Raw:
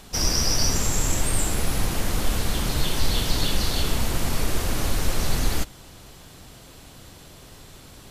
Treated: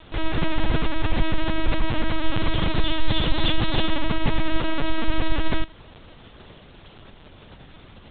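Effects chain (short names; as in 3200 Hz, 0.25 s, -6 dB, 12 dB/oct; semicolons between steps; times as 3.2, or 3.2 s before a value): in parallel at -5 dB: requantised 6-bit, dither none; on the sum: LPC vocoder at 8 kHz pitch kept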